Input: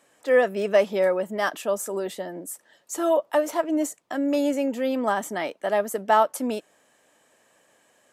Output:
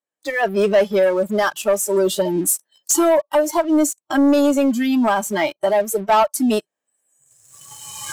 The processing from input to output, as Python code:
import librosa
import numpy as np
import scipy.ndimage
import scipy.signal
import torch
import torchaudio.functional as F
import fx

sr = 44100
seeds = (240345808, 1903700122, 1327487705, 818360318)

y = fx.recorder_agc(x, sr, target_db=-13.0, rise_db_per_s=16.0, max_gain_db=30)
y = fx.noise_reduce_blind(y, sr, reduce_db=28)
y = fx.leveller(y, sr, passes=2)